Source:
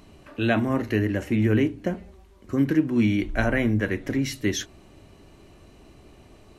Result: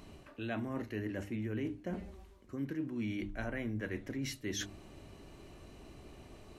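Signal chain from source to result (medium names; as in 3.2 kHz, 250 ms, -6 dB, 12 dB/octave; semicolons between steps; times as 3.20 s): de-hum 101.1 Hz, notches 3; reverse; compression 4:1, threshold -35 dBFS, peak gain reduction 15.5 dB; reverse; trim -2.5 dB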